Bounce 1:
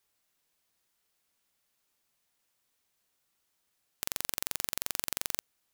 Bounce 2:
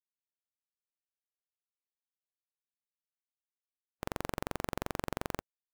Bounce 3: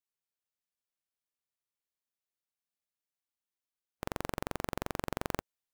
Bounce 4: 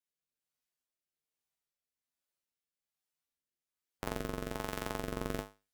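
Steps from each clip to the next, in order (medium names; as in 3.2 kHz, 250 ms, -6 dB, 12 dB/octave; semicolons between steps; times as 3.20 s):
treble shelf 2 kHz -11 dB; spectral contrast expander 2.5:1; trim +1 dB
gain riding 0.5 s; trim +1 dB
feedback comb 51 Hz, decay 0.28 s, harmonics odd, mix 90%; rotary cabinet horn 1.2 Hz; trim +11 dB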